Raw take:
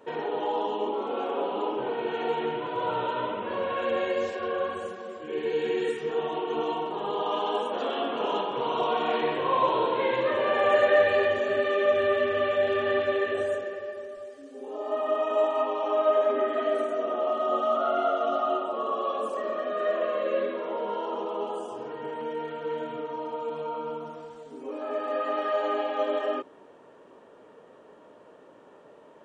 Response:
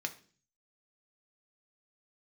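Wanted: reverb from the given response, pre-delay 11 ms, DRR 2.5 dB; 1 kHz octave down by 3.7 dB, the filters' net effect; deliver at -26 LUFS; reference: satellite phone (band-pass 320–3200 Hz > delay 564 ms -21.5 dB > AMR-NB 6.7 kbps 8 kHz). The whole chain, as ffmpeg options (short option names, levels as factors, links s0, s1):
-filter_complex "[0:a]equalizer=f=1000:t=o:g=-4.5,asplit=2[s0][s1];[1:a]atrim=start_sample=2205,adelay=11[s2];[s1][s2]afir=irnorm=-1:irlink=0,volume=0.631[s3];[s0][s3]amix=inputs=2:normalize=0,highpass=320,lowpass=3200,aecho=1:1:564:0.0841,volume=1.58" -ar 8000 -c:a libopencore_amrnb -b:a 6700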